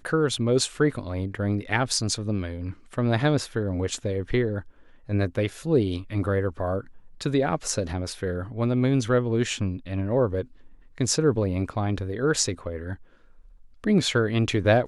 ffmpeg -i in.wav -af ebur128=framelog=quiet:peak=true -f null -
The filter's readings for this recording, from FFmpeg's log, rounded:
Integrated loudness:
  I:         -25.8 LUFS
  Threshold: -36.2 LUFS
Loudness range:
  LRA:         1.9 LU
  Threshold: -46.5 LUFS
  LRA low:   -27.3 LUFS
  LRA high:  -25.4 LUFS
True peak:
  Peak:       -6.1 dBFS